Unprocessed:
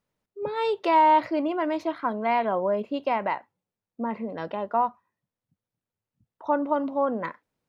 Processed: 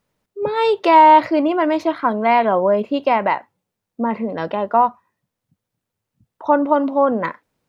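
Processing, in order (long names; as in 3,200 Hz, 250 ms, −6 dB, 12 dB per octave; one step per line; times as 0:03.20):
0:06.65–0:07.12: linear-phase brick-wall high-pass 170 Hz
level +9 dB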